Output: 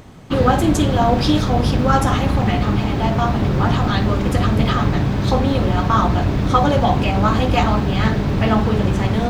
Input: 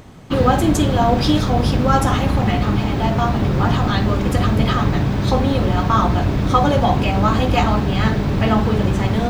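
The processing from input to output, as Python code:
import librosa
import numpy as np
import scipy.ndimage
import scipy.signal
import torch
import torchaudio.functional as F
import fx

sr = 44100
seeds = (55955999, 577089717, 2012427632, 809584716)

y = fx.doppler_dist(x, sr, depth_ms=0.12)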